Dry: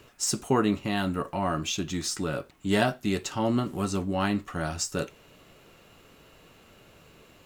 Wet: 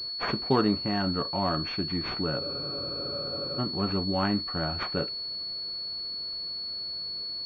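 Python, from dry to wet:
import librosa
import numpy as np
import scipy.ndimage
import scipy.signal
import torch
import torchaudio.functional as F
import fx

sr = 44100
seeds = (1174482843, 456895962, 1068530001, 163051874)

y = fx.spec_freeze(x, sr, seeds[0], at_s=2.41, hold_s=1.18)
y = fx.pwm(y, sr, carrier_hz=4400.0)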